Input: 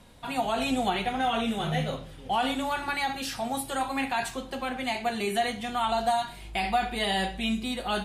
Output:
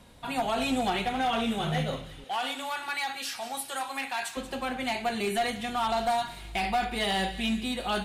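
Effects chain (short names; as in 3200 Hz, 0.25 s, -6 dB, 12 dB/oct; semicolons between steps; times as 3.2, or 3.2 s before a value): one-sided clip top -24 dBFS, bottom -19.5 dBFS; 2.24–4.37 HPF 1000 Hz 6 dB/oct; thin delay 0.183 s, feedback 53%, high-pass 1800 Hz, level -13 dB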